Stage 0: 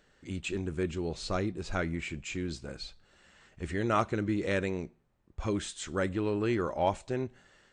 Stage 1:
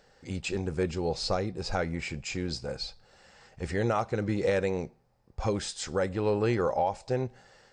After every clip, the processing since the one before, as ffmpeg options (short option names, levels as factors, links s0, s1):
-af "equalizer=f=125:t=o:w=0.33:g=5,equalizer=f=315:t=o:w=0.33:g=-5,equalizer=f=500:t=o:w=0.33:g=9,equalizer=f=800:t=o:w=0.33:g=10,equalizer=f=3150:t=o:w=0.33:g=-3,equalizer=f=5000:t=o:w=0.33:g=11,alimiter=limit=0.112:level=0:latency=1:release=281,volume=1.26"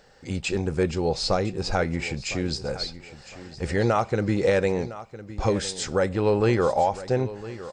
-af "aecho=1:1:1008|2016|3024:0.168|0.0504|0.0151,volume=1.88"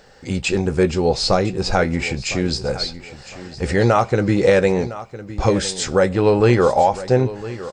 -filter_complex "[0:a]asplit=2[s0][s1];[s1]adelay=16,volume=0.266[s2];[s0][s2]amix=inputs=2:normalize=0,volume=2.11"